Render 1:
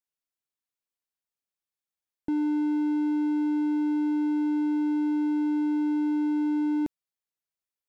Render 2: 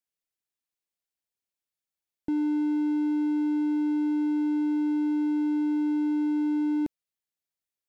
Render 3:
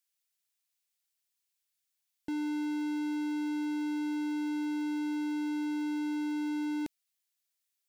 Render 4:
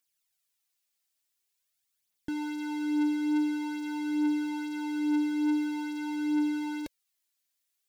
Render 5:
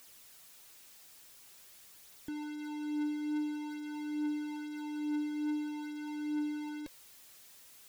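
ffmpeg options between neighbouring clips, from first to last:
ffmpeg -i in.wav -af "equalizer=frequency=1100:width_type=o:width=0.73:gain=-4.5" out.wav
ffmpeg -i in.wav -af "tiltshelf=frequency=1200:gain=-8.5" out.wav
ffmpeg -i in.wav -af "aphaser=in_gain=1:out_gain=1:delay=4:decay=0.52:speed=0.47:type=triangular,volume=1.5dB" out.wav
ffmpeg -i in.wav -af "aeval=exprs='val(0)+0.5*0.0075*sgn(val(0))':channel_layout=same,volume=-8dB" out.wav

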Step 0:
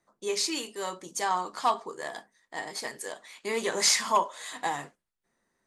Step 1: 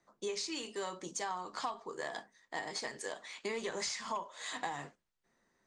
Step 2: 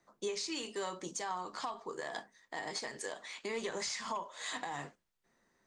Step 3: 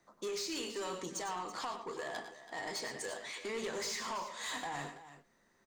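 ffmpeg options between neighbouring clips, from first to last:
ffmpeg -i in.wav -filter_complex "[0:a]acrossover=split=110[link_01][link_02];[link_02]acompressor=threshold=-36dB:ratio=10[link_03];[link_01][link_03]amix=inputs=2:normalize=0,lowpass=frequency=7600:width=0.5412,lowpass=frequency=7600:width=1.3066,volume=1dB" out.wav
ffmpeg -i in.wav -af "alimiter=level_in=5dB:limit=-24dB:level=0:latency=1:release=109,volume=-5dB,volume=1.5dB" out.wav
ffmpeg -i in.wav -filter_complex "[0:a]asoftclip=type=tanh:threshold=-37dB,asplit=2[link_01][link_02];[link_02]aecho=0:1:96|114|330:0.266|0.266|0.2[link_03];[link_01][link_03]amix=inputs=2:normalize=0,volume=2.5dB" out.wav

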